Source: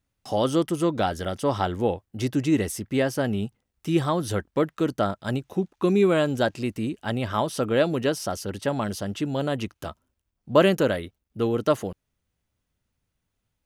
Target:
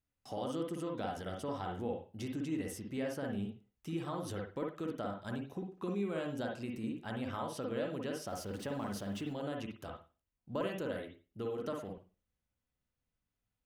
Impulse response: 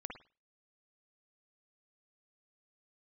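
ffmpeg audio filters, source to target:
-filter_complex "[0:a]asettb=1/sr,asplit=3[a][b][c];[a]atrim=end=8.274[d];[b]atrim=start=8.27:end=9.33,asetpts=PTS-STARTPTS,afade=t=in:d=0.004:c=qsin,afade=t=out:st=1.056:d=0.004:c=qsin,aeval=exprs='val(0)+0.5*0.0112*sgn(val(0))':c=same[e];[c]atrim=start=9.326[f];[d][e]acrossfade=d=0.004:c1=hsin:c2=qsin[g];[g][f]acrossfade=d=0.004:c1=qsin:c2=hsin,acompressor=threshold=-27dB:ratio=2.5[h];[1:a]atrim=start_sample=2205[i];[h][i]afir=irnorm=-1:irlink=0,volume=-7dB"

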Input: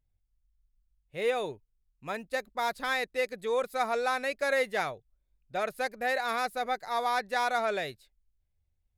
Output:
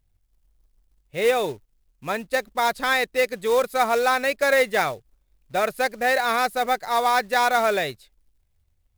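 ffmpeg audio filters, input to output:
-af "acontrast=84,acrusher=bits=4:mode=log:mix=0:aa=0.000001,volume=1.5dB"

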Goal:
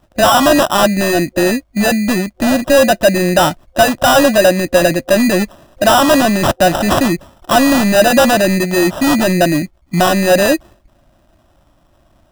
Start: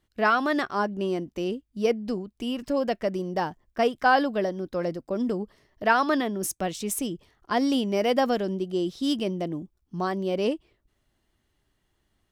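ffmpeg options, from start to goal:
-af "acrusher=samples=20:mix=1:aa=0.000001,apsyclip=27dB,superequalizer=7b=0.398:8b=2,volume=-8dB"

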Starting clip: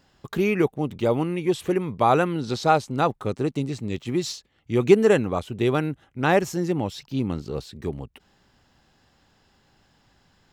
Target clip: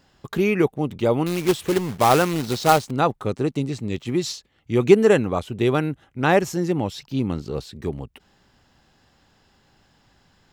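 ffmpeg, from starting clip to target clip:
-filter_complex "[0:a]asettb=1/sr,asplit=3[a][b][c];[a]atrim=end=1.264[d];[b]atrim=start=1.26:end=2.91,asetpts=PTS-STARTPTS,afade=t=in:d=0.004:c=qsin,afade=t=out:st=1.646:d=0.004:c=qsin,acrusher=bits=2:mode=log:mix=0:aa=0.000001[e];[c]atrim=start=2.906[f];[d][e]acrossfade=d=0.004:c1=hsin:c2=qsin[g];[g][f]acrossfade=d=0.004:c1=qsin:c2=hsin,volume=2dB"

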